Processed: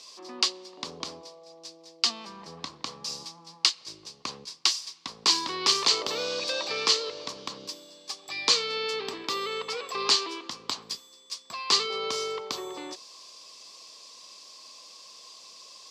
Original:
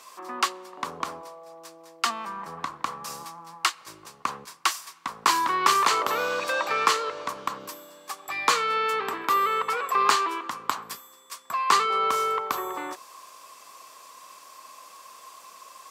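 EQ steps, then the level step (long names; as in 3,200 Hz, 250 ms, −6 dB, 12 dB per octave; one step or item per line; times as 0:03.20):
drawn EQ curve 450 Hz 0 dB, 1,400 Hz −13 dB, 4,800 Hz +12 dB, 14,000 Hz −18 dB
−1.5 dB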